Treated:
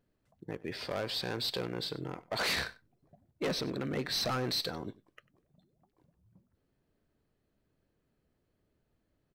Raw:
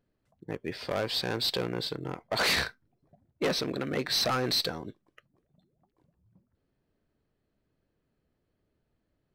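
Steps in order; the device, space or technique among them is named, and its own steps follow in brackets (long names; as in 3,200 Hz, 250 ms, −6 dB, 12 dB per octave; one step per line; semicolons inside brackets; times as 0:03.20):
0:03.47–0:04.50: low-shelf EQ 280 Hz +5.5 dB
clipper into limiter (hard clipping −22.5 dBFS, distortion −26 dB; brickwall limiter −28 dBFS, peak gain reduction 5.5 dB)
single-tap delay 96 ms −20.5 dB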